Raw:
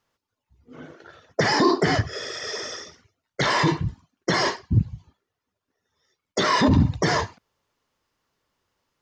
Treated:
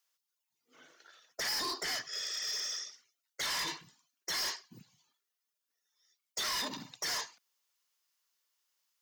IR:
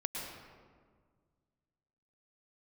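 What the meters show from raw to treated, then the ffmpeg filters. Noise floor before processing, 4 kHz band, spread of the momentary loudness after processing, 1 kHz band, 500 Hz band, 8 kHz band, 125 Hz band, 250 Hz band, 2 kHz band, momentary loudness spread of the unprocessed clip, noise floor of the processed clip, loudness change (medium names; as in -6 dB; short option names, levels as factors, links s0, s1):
-84 dBFS, -6.0 dB, 13 LU, -18.0 dB, -23.5 dB, -2.0 dB, -36.0 dB, -27.5 dB, -13.5 dB, 13 LU, under -85 dBFS, -12.0 dB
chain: -af "highpass=f=140:w=0.5412,highpass=f=140:w=1.3066,aderivative,asoftclip=type=hard:threshold=0.02,volume=1.26"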